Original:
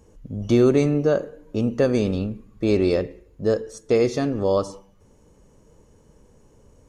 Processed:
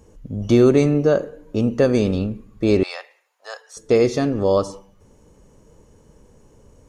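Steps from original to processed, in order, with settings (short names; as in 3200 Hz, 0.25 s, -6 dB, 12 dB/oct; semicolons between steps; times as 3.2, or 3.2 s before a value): 2.83–3.77 Chebyshev high-pass 760 Hz, order 4; gain +3 dB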